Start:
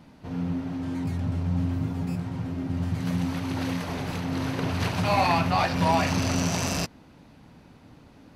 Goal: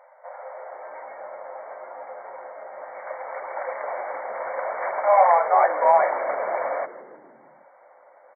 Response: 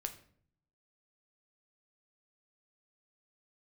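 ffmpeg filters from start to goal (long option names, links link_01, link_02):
-filter_complex "[0:a]tiltshelf=frequency=670:gain=9,afftfilt=real='re*between(b*sr/4096,500,2300)':imag='im*between(b*sr/4096,500,2300)':win_size=4096:overlap=0.75,asplit=6[link_01][link_02][link_03][link_04][link_05][link_06];[link_02]adelay=157,afreqshift=-75,volume=-15dB[link_07];[link_03]adelay=314,afreqshift=-150,volume=-20.7dB[link_08];[link_04]adelay=471,afreqshift=-225,volume=-26.4dB[link_09];[link_05]adelay=628,afreqshift=-300,volume=-32dB[link_10];[link_06]adelay=785,afreqshift=-375,volume=-37.7dB[link_11];[link_01][link_07][link_08][link_09][link_10][link_11]amix=inputs=6:normalize=0,volume=9dB"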